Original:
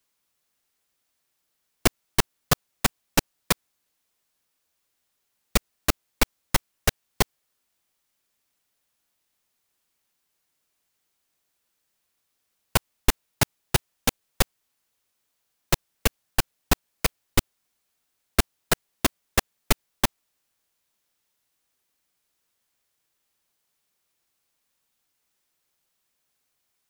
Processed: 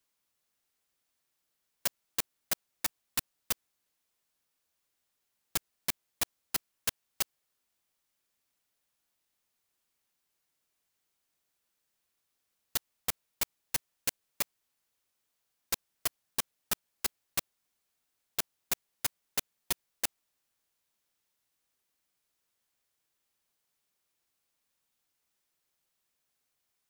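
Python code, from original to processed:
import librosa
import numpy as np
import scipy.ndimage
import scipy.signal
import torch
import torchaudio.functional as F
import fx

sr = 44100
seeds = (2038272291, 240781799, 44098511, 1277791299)

y = (np.mod(10.0 ** (16.0 / 20.0) * x + 1.0, 2.0) - 1.0) / 10.0 ** (16.0 / 20.0)
y = y * 10.0 ** (-5.0 / 20.0)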